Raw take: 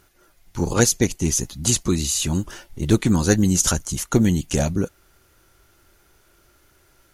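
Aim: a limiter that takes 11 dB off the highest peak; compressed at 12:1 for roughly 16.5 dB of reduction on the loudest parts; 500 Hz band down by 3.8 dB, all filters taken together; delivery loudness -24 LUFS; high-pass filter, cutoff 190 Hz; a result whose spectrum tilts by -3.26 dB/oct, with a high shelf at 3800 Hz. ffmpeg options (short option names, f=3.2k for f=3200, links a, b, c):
-af "highpass=190,equalizer=f=500:t=o:g=-5,highshelf=f=3.8k:g=5,acompressor=threshold=-28dB:ratio=12,volume=11.5dB,alimiter=limit=-13dB:level=0:latency=1"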